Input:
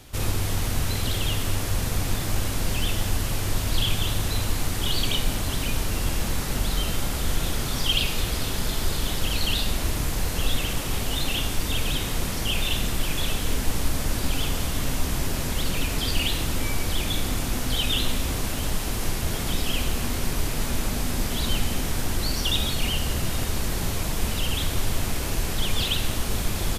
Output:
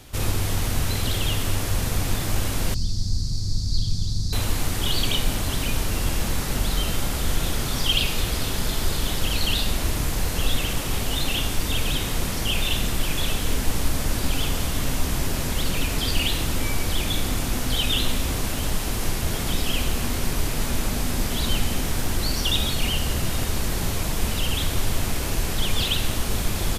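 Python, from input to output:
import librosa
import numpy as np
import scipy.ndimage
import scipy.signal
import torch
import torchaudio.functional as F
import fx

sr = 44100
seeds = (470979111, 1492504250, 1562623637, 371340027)

y = fx.curve_eq(x, sr, hz=(170.0, 550.0, 2900.0, 4500.0, 14000.0), db=(0, -22, -28, 6, -25), at=(2.74, 4.33))
y = fx.quant_companded(y, sr, bits=8, at=(21.81, 22.24))
y = F.gain(torch.from_numpy(y), 1.5).numpy()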